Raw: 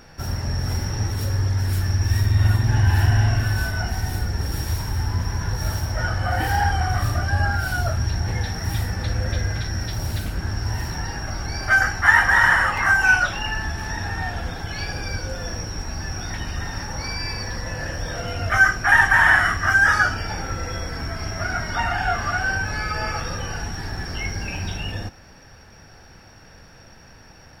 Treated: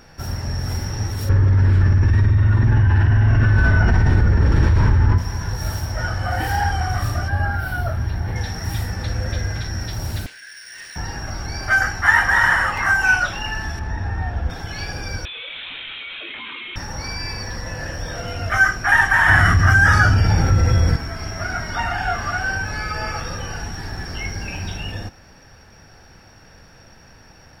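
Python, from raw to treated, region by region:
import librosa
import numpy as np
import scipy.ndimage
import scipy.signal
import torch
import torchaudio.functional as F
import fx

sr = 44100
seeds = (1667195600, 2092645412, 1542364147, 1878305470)

y = fx.chain(x, sr, fx.bessel_lowpass(hz=1600.0, order=2),
    fx.peak_eq(hz=740.0, db=-11.0, octaves=0.31),
    fx.env_flatten(amount_pct=100), at=(1.29, 5.18))
y = fx.chain(y, sr, fx.peak_eq(hz=6700.0, db=-14.0, octaves=1.1),
    fx.notch(hz=2600.0, q=25.0), at=(7.28, 8.36))
y = fx.chain(y, sr, fx.steep_highpass(hz=1500.0, slope=96),
    fx.resample_linear(factor=3), at=(10.26, 10.96))
y = fx.chain(y, sr, fx.lowpass(hz=1300.0, slope=6),
    fx.peak_eq(hz=65.0, db=8.5, octaves=1.1), at=(13.79, 14.5))
y = fx.chain(y, sr, fx.highpass(hz=530.0, slope=12),
    fx.freq_invert(carrier_hz=4000),
    fx.env_flatten(amount_pct=100), at=(15.25, 16.76))
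y = fx.chain(y, sr, fx.peak_eq(hz=100.0, db=14.5, octaves=2.4),
    fx.env_flatten(amount_pct=50), at=(19.28, 20.96))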